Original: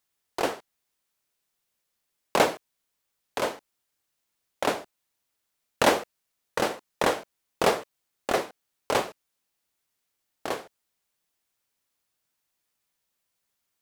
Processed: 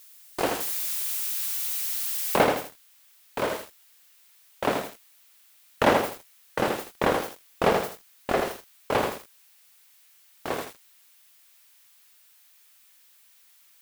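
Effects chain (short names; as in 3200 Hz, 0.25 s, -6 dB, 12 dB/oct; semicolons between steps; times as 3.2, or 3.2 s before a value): switching spikes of -21 dBFS; tone controls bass +5 dB, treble -6 dB, from 2.36 s treble -13 dB; gate with hold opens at -23 dBFS; lo-fi delay 81 ms, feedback 35%, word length 7-bit, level -4.5 dB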